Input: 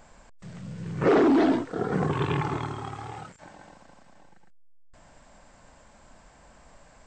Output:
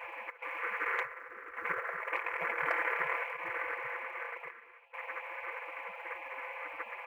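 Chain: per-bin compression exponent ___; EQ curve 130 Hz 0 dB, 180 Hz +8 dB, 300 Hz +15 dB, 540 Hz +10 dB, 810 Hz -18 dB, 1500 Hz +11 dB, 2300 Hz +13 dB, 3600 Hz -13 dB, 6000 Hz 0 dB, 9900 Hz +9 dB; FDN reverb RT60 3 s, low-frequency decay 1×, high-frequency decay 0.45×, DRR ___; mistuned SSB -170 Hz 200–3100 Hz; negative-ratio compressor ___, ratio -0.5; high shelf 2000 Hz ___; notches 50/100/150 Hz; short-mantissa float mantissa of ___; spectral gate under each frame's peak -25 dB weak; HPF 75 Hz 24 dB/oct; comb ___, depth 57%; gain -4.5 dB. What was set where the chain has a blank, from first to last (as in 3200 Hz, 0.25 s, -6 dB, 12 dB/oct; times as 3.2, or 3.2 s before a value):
0.4, 17 dB, -11 dBFS, -2.5 dB, 8-bit, 5.9 ms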